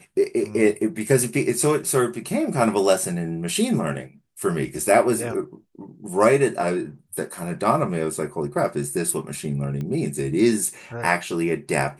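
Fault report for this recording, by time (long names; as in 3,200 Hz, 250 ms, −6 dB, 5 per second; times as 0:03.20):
0:09.81: click −20 dBFS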